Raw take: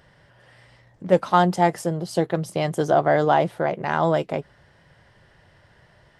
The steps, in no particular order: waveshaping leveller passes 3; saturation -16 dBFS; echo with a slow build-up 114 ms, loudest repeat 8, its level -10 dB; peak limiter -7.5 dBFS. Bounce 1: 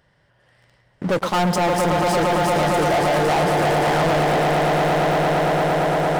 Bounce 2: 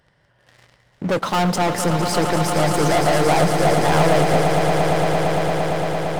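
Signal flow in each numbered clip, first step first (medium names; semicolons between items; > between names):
echo with a slow build-up > waveshaping leveller > peak limiter > saturation; peak limiter > waveshaping leveller > saturation > echo with a slow build-up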